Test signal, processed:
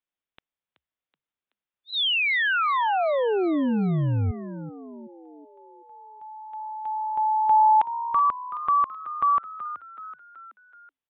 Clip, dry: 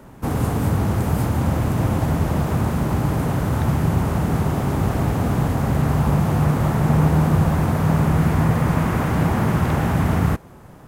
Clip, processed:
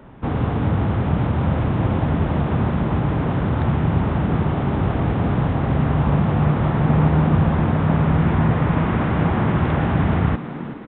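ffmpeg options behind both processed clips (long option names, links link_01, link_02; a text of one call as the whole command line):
ffmpeg -i in.wav -filter_complex "[0:a]aresample=8000,aresample=44100,asplit=6[link_01][link_02][link_03][link_04][link_05][link_06];[link_02]adelay=377,afreqshift=66,volume=-13dB[link_07];[link_03]adelay=754,afreqshift=132,volume=-18.8dB[link_08];[link_04]adelay=1131,afreqshift=198,volume=-24.7dB[link_09];[link_05]adelay=1508,afreqshift=264,volume=-30.5dB[link_10];[link_06]adelay=1885,afreqshift=330,volume=-36.4dB[link_11];[link_01][link_07][link_08][link_09][link_10][link_11]amix=inputs=6:normalize=0" out.wav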